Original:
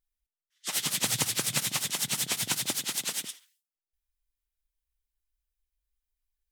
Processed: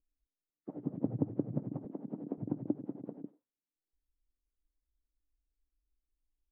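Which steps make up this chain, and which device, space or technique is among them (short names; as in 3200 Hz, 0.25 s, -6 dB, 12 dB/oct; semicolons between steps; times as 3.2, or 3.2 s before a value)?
under water (LPF 550 Hz 24 dB/oct; bell 290 Hz +11 dB 0.39 oct); 1.85–2.38 HPF 190 Hz 24 dB/oct; gain +1 dB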